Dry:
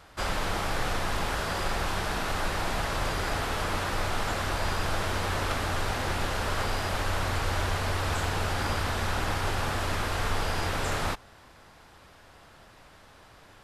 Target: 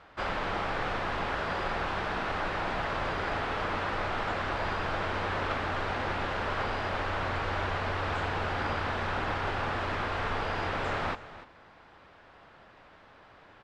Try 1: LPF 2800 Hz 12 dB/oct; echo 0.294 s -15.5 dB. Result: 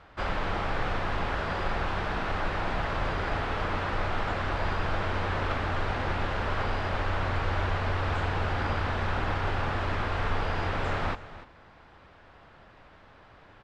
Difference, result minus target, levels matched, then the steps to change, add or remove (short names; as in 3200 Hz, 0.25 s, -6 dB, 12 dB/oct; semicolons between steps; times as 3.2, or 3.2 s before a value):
125 Hz band +5.0 dB
add after LPF: low shelf 130 Hz -9.5 dB